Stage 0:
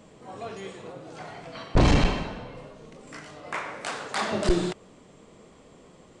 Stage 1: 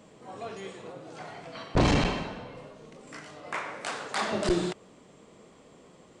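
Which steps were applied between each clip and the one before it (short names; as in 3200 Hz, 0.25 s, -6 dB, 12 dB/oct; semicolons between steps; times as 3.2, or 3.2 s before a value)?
low shelf 64 Hz -11 dB; gain -1.5 dB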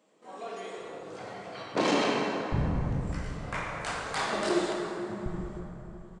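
bands offset in time highs, lows 0.77 s, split 210 Hz; gate -51 dBFS, range -10 dB; plate-style reverb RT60 3.6 s, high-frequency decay 0.45×, DRR -1 dB; gain -2.5 dB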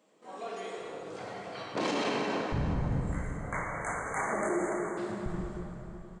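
spectral delete 2.74–4.98, 2300–6100 Hz; limiter -22 dBFS, peak gain reduction 7.5 dB; thinning echo 0.211 s, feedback 59%, level -14 dB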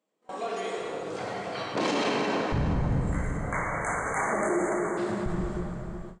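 gate with hold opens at -36 dBFS; in parallel at +2 dB: limiter -29.5 dBFS, peak gain reduction 8 dB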